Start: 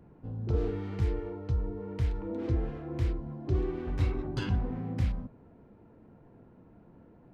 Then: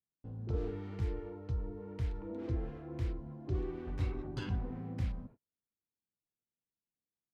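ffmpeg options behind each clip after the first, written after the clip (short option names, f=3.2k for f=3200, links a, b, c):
-af "agate=range=-42dB:threshold=-46dB:ratio=16:detection=peak,volume=-6.5dB"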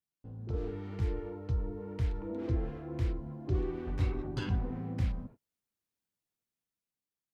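-af "dynaudnorm=f=130:g=13:m=5dB,volume=-1dB"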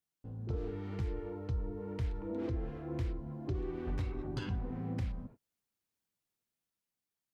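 -af "alimiter=level_in=4dB:limit=-24dB:level=0:latency=1:release=403,volume=-4dB,volume=1dB"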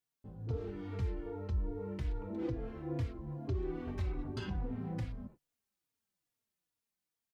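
-filter_complex "[0:a]asplit=2[a][b];[b]adelay=3.6,afreqshift=-2.4[c];[a][c]amix=inputs=2:normalize=1,volume=2.5dB"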